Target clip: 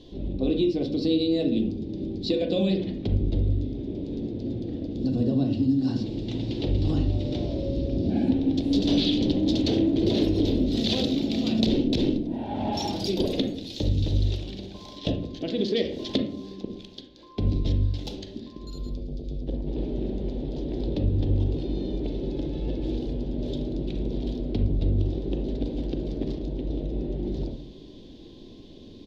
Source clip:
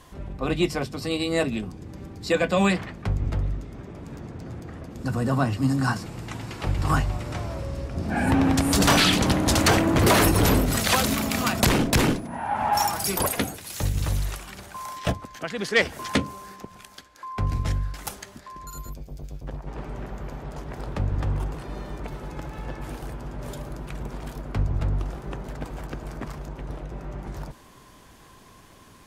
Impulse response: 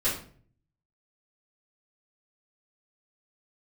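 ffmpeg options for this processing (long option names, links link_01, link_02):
-filter_complex "[0:a]firequalizer=gain_entry='entry(150,0);entry(290,11);entry(1200,-25);entry(3600,8);entry(8600,-26)':delay=0.05:min_phase=1,acompressor=threshold=-23dB:ratio=5,asplit=2[link_01][link_02];[1:a]atrim=start_sample=2205,lowpass=2600,adelay=31[link_03];[link_02][link_03]afir=irnorm=-1:irlink=0,volume=-13.5dB[link_04];[link_01][link_04]amix=inputs=2:normalize=0"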